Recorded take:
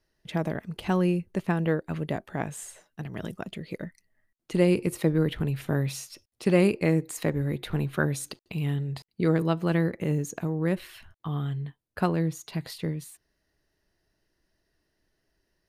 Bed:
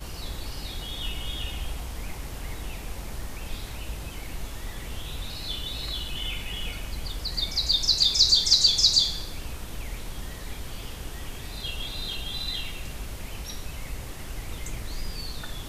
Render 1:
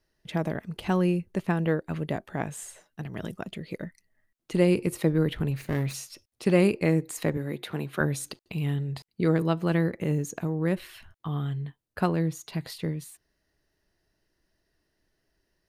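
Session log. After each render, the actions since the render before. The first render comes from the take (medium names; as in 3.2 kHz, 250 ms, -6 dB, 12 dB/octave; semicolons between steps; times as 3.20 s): 5.51–5.94 s: comb filter that takes the minimum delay 0.45 ms; 7.37–8.01 s: Bessel high-pass 220 Hz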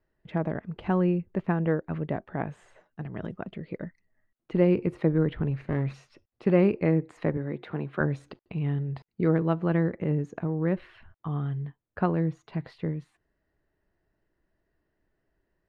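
low-pass 1.8 kHz 12 dB/octave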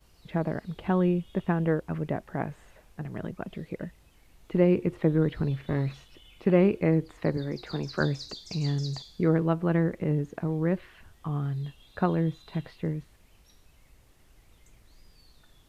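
add bed -23 dB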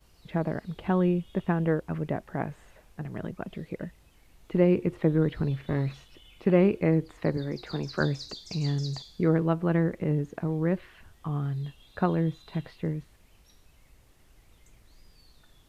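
no audible change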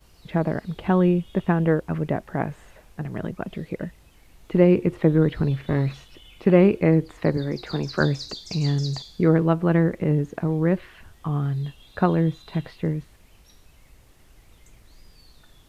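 trim +5.5 dB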